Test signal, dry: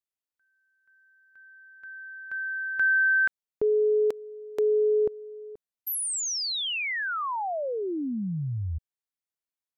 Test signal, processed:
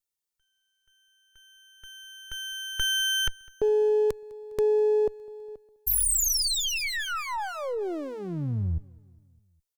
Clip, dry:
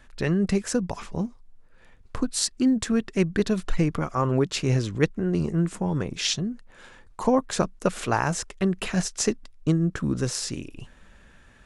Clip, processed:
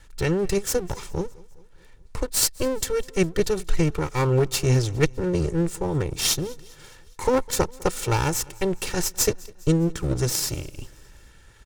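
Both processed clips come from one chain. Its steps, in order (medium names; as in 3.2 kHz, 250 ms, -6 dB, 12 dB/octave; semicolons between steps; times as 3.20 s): comb filter that takes the minimum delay 2.2 ms; tone controls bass +5 dB, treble +8 dB; on a send: feedback delay 204 ms, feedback 58%, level -24 dB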